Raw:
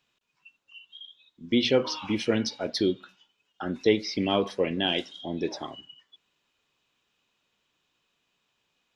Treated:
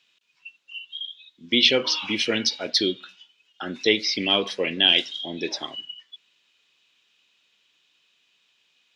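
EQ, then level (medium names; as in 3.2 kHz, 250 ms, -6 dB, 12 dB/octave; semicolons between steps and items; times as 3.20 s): frequency weighting D; 0.0 dB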